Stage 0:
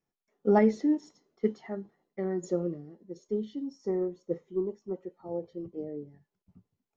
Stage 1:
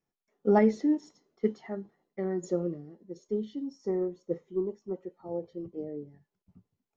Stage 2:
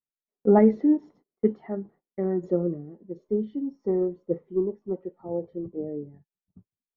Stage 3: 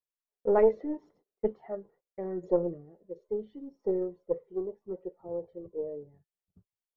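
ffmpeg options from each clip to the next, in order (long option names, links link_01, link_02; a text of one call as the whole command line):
ffmpeg -i in.wav -af anull out.wav
ffmpeg -i in.wav -af "agate=range=-24dB:threshold=-57dB:ratio=16:detection=peak,lowpass=2600,tiltshelf=frequency=1400:gain=6" out.wav
ffmpeg -i in.wav -af "aphaser=in_gain=1:out_gain=1:delay=2.2:decay=0.39:speed=0.78:type=triangular,aeval=exprs='0.447*(cos(1*acos(clip(val(0)/0.447,-1,1)))-cos(1*PI/2))+0.1*(cos(2*acos(clip(val(0)/0.447,-1,1)))-cos(2*PI/2))':channel_layout=same,equalizer=frequency=125:width_type=o:width=1:gain=-4,equalizer=frequency=250:width_type=o:width=1:gain=-9,equalizer=frequency=500:width_type=o:width=1:gain=7,volume=-6.5dB" out.wav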